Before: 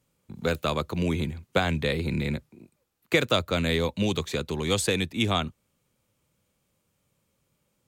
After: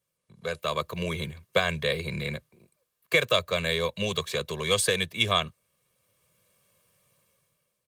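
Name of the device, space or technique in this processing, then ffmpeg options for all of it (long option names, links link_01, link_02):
video call: -af "highpass=150,equalizer=frequency=320:width=0.43:gain=-5.5,aecho=1:1:1.8:0.96,dynaudnorm=framelen=210:gausssize=7:maxgain=15dB,volume=-7.5dB" -ar 48000 -c:a libopus -b:a 32k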